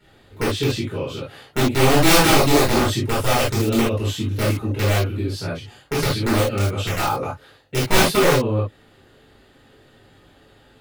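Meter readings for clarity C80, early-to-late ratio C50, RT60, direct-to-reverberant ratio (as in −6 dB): 14.0 dB, 3.5 dB, non-exponential decay, −10.5 dB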